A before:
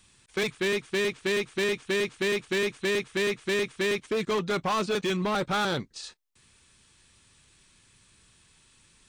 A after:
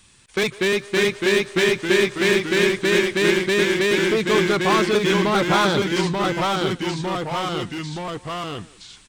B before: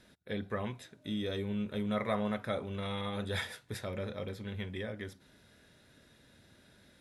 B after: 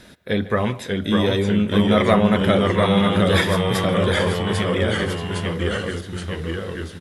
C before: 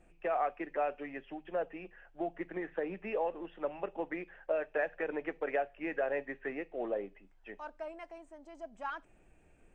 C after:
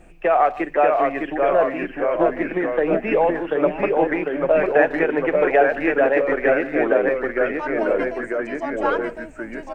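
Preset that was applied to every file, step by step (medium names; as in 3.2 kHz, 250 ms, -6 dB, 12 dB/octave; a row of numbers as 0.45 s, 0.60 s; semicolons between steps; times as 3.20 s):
speakerphone echo 150 ms, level -17 dB; ever faster or slower copies 573 ms, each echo -1 st, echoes 3; normalise loudness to -20 LUFS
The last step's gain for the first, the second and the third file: +6.5 dB, +15.5 dB, +15.0 dB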